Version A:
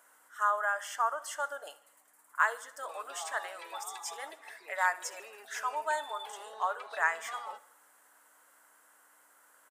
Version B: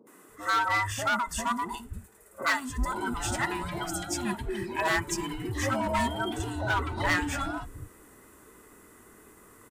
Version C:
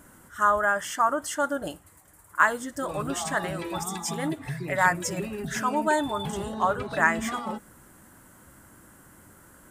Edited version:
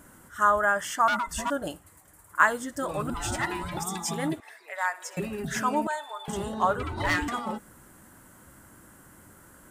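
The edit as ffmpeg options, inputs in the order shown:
-filter_complex "[1:a]asplit=3[s0][s1][s2];[0:a]asplit=2[s3][s4];[2:a]asplit=6[s5][s6][s7][s8][s9][s10];[s5]atrim=end=1.082[s11];[s0]atrim=start=1.078:end=1.502[s12];[s6]atrim=start=1.498:end=3.102[s13];[s1]atrim=start=3.098:end=3.772[s14];[s7]atrim=start=3.768:end=4.402[s15];[s3]atrim=start=4.398:end=5.172[s16];[s8]atrim=start=5.168:end=5.872[s17];[s4]atrim=start=5.868:end=6.282[s18];[s9]atrim=start=6.278:end=6.832[s19];[s2]atrim=start=6.828:end=7.282[s20];[s10]atrim=start=7.278[s21];[s11][s12]acrossfade=d=0.004:c1=hsin:c2=hsin[s22];[s22][s13]acrossfade=d=0.004:c1=hsin:c2=hsin[s23];[s23][s14]acrossfade=d=0.004:c1=hsin:c2=hsin[s24];[s24][s15]acrossfade=d=0.004:c1=hsin:c2=hsin[s25];[s25][s16]acrossfade=d=0.004:c1=hsin:c2=hsin[s26];[s26][s17]acrossfade=d=0.004:c1=hsin:c2=hsin[s27];[s27][s18]acrossfade=d=0.004:c1=hsin:c2=hsin[s28];[s28][s19]acrossfade=d=0.004:c1=hsin:c2=hsin[s29];[s29][s20]acrossfade=d=0.004:c1=hsin:c2=hsin[s30];[s30][s21]acrossfade=d=0.004:c1=hsin:c2=hsin"

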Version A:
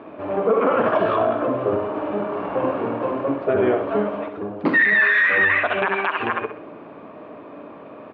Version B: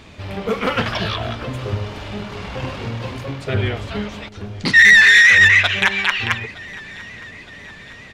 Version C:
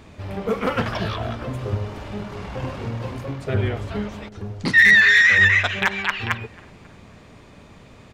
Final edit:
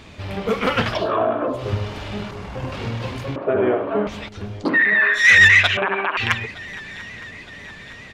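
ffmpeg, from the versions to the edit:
-filter_complex "[0:a]asplit=4[s0][s1][s2][s3];[1:a]asplit=6[s4][s5][s6][s7][s8][s9];[s4]atrim=end=1.13[s10];[s0]atrim=start=0.89:end=1.69[s11];[s5]atrim=start=1.45:end=2.312[s12];[2:a]atrim=start=2.308:end=2.722[s13];[s6]atrim=start=2.718:end=3.362[s14];[s1]atrim=start=3.358:end=4.072[s15];[s7]atrim=start=4.068:end=4.7[s16];[s2]atrim=start=4.54:end=5.29[s17];[s8]atrim=start=5.13:end=5.772[s18];[s3]atrim=start=5.768:end=6.172[s19];[s9]atrim=start=6.168[s20];[s10][s11]acrossfade=d=0.24:c1=tri:c2=tri[s21];[s21][s12]acrossfade=d=0.24:c1=tri:c2=tri[s22];[s22][s13]acrossfade=d=0.004:c1=hsin:c2=hsin[s23];[s23][s14]acrossfade=d=0.004:c1=hsin:c2=hsin[s24];[s24][s15]acrossfade=d=0.004:c1=hsin:c2=hsin[s25];[s25][s16]acrossfade=d=0.004:c1=hsin:c2=hsin[s26];[s26][s17]acrossfade=d=0.16:c1=tri:c2=tri[s27];[s27][s18]acrossfade=d=0.16:c1=tri:c2=tri[s28];[s28][s19]acrossfade=d=0.004:c1=hsin:c2=hsin[s29];[s29][s20]acrossfade=d=0.004:c1=hsin:c2=hsin"

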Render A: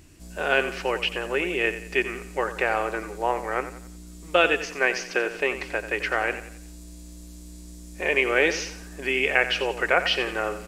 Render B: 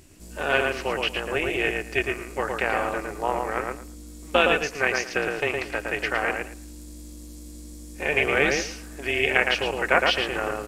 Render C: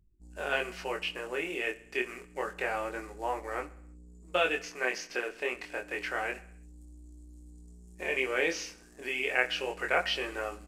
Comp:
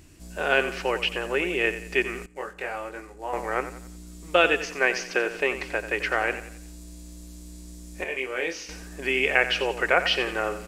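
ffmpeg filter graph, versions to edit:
-filter_complex "[2:a]asplit=2[s0][s1];[0:a]asplit=3[s2][s3][s4];[s2]atrim=end=2.262[s5];[s0]atrim=start=2.258:end=3.332[s6];[s3]atrim=start=3.328:end=8.042[s7];[s1]atrim=start=8.038:end=8.692[s8];[s4]atrim=start=8.688[s9];[s5][s6]acrossfade=d=0.004:c1=hsin:c2=hsin[s10];[s10][s7]acrossfade=d=0.004:c1=hsin:c2=hsin[s11];[s11][s8]acrossfade=d=0.004:c1=hsin:c2=hsin[s12];[s12][s9]acrossfade=d=0.004:c1=hsin:c2=hsin"

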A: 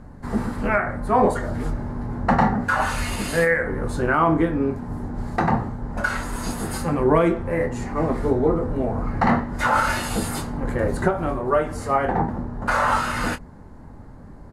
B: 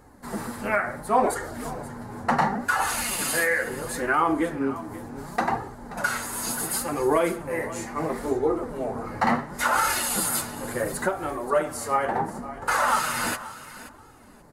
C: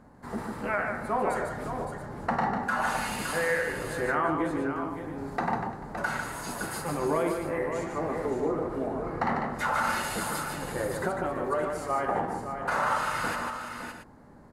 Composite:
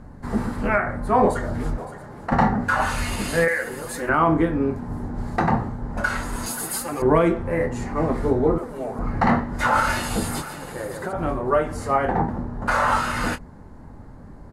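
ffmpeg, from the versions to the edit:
-filter_complex "[2:a]asplit=2[s0][s1];[1:a]asplit=3[s2][s3][s4];[0:a]asplit=6[s5][s6][s7][s8][s9][s10];[s5]atrim=end=1.782[s11];[s0]atrim=start=1.778:end=2.322[s12];[s6]atrim=start=2.318:end=3.482[s13];[s2]atrim=start=3.478:end=4.092[s14];[s7]atrim=start=4.088:end=6.462[s15];[s3]atrim=start=6.458:end=7.022[s16];[s8]atrim=start=7.018:end=8.582[s17];[s4]atrim=start=8.578:end=8.992[s18];[s9]atrim=start=8.988:end=10.422[s19];[s1]atrim=start=10.418:end=11.132[s20];[s10]atrim=start=11.128[s21];[s11][s12]acrossfade=d=0.004:c1=hsin:c2=hsin[s22];[s22][s13]acrossfade=d=0.004:c1=hsin:c2=hsin[s23];[s23][s14]acrossfade=d=0.004:c1=hsin:c2=hsin[s24];[s24][s15]acrossfade=d=0.004:c1=hsin:c2=hsin[s25];[s25][s16]acrossfade=d=0.004:c1=hsin:c2=hsin[s26];[s26][s17]acrossfade=d=0.004:c1=hsin:c2=hsin[s27];[s27][s18]acrossfade=d=0.004:c1=hsin:c2=hsin[s28];[s28][s19]acrossfade=d=0.004:c1=hsin:c2=hsin[s29];[s29][s20]acrossfade=d=0.004:c1=hsin:c2=hsin[s30];[s30][s21]acrossfade=d=0.004:c1=hsin:c2=hsin"

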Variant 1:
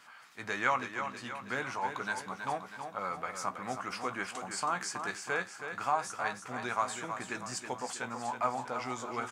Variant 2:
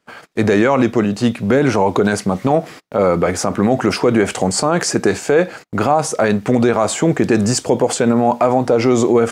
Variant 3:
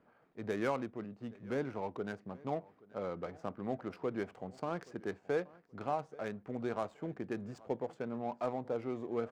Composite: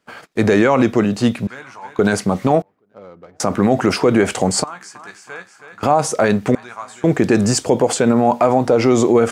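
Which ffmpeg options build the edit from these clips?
-filter_complex "[0:a]asplit=3[s0][s1][s2];[1:a]asplit=5[s3][s4][s5][s6][s7];[s3]atrim=end=1.472[s8];[s0]atrim=start=1.468:end=1.992[s9];[s4]atrim=start=1.988:end=2.622[s10];[2:a]atrim=start=2.618:end=3.402[s11];[s5]atrim=start=3.398:end=4.642[s12];[s1]atrim=start=4.638:end=5.832[s13];[s6]atrim=start=5.828:end=6.552[s14];[s2]atrim=start=6.548:end=7.042[s15];[s7]atrim=start=7.038[s16];[s8][s9]acrossfade=d=0.004:c1=hsin:c2=hsin[s17];[s17][s10]acrossfade=d=0.004:c1=hsin:c2=hsin[s18];[s18][s11]acrossfade=d=0.004:c1=hsin:c2=hsin[s19];[s19][s12]acrossfade=d=0.004:c1=hsin:c2=hsin[s20];[s20][s13]acrossfade=d=0.004:c1=hsin:c2=hsin[s21];[s21][s14]acrossfade=d=0.004:c1=hsin:c2=hsin[s22];[s22][s15]acrossfade=d=0.004:c1=hsin:c2=hsin[s23];[s23][s16]acrossfade=d=0.004:c1=hsin:c2=hsin"

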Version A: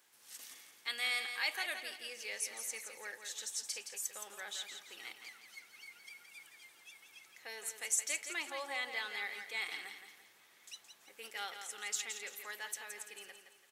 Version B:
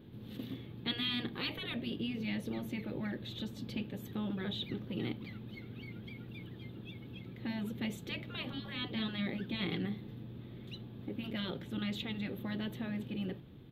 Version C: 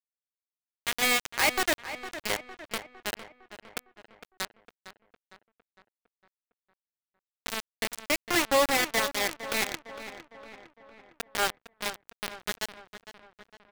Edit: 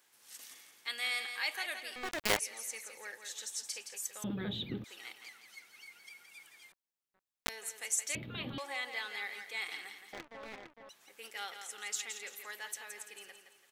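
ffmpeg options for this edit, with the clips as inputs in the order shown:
-filter_complex "[2:a]asplit=3[s0][s1][s2];[1:a]asplit=2[s3][s4];[0:a]asplit=6[s5][s6][s7][s8][s9][s10];[s5]atrim=end=1.962[s11];[s0]atrim=start=1.958:end=2.392[s12];[s6]atrim=start=2.388:end=4.242[s13];[s3]atrim=start=4.238:end=4.842[s14];[s7]atrim=start=4.838:end=6.722[s15];[s1]atrim=start=6.718:end=7.492[s16];[s8]atrim=start=7.488:end=8.152[s17];[s4]atrim=start=8.148:end=8.582[s18];[s9]atrim=start=8.578:end=10.132[s19];[s2]atrim=start=10.128:end=10.892[s20];[s10]atrim=start=10.888[s21];[s11][s12]acrossfade=d=0.004:c1=hsin:c2=hsin[s22];[s22][s13]acrossfade=d=0.004:c1=hsin:c2=hsin[s23];[s23][s14]acrossfade=d=0.004:c1=hsin:c2=hsin[s24];[s24][s15]acrossfade=d=0.004:c1=hsin:c2=hsin[s25];[s25][s16]acrossfade=d=0.004:c1=hsin:c2=hsin[s26];[s26][s17]acrossfade=d=0.004:c1=hsin:c2=hsin[s27];[s27][s18]acrossfade=d=0.004:c1=hsin:c2=hsin[s28];[s28][s19]acrossfade=d=0.004:c1=hsin:c2=hsin[s29];[s29][s20]acrossfade=d=0.004:c1=hsin:c2=hsin[s30];[s30][s21]acrossfade=d=0.004:c1=hsin:c2=hsin"

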